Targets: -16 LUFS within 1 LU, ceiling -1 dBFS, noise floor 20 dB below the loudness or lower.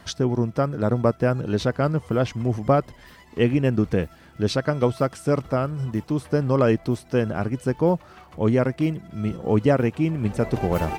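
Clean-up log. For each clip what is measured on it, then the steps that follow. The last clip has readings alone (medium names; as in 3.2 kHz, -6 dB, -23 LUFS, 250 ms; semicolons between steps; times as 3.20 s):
tick rate 51 per s; loudness -23.5 LUFS; peak level -6.5 dBFS; loudness target -16.0 LUFS
-> de-click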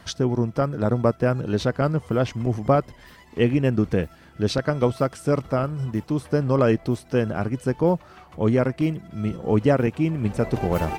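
tick rate 0.27 per s; loudness -23.5 LUFS; peak level -6.0 dBFS; loudness target -16.0 LUFS
-> trim +7.5 dB; peak limiter -1 dBFS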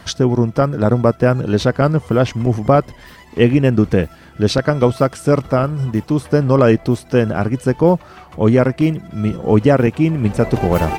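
loudness -16.0 LUFS; peak level -1.0 dBFS; noise floor -42 dBFS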